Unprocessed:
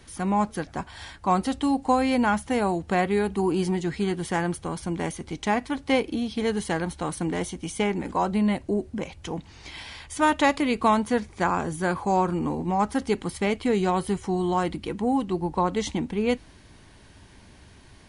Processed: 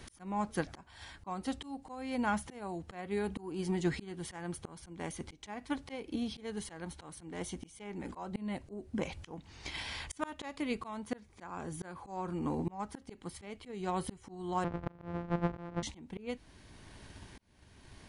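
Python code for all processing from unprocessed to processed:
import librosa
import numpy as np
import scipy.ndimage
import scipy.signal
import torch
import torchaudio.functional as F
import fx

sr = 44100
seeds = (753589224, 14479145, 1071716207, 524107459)

y = fx.chain(x, sr, fx.sample_sort(block=256),
    fx.lowpass(hz=1400.0, slope=12), at=(14.64, 15.83))
y = fx.transient(y, sr, attack_db=7, sustain_db=2)
y = fx.rider(y, sr, range_db=10, speed_s=2.0)
y = fx.auto_swell(y, sr, attack_ms=781.0)
y = y * 10.0 ** (-2.5 / 20.0)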